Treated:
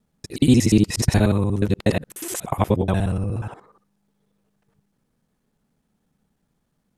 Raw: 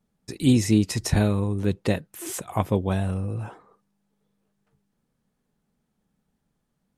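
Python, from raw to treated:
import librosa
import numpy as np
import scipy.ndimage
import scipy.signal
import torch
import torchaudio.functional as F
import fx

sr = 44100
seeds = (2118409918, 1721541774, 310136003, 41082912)

y = fx.local_reverse(x, sr, ms=60.0)
y = y * librosa.db_to_amplitude(4.0)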